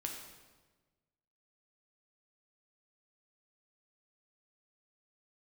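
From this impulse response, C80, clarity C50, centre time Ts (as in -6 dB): 6.0 dB, 4.0 dB, 42 ms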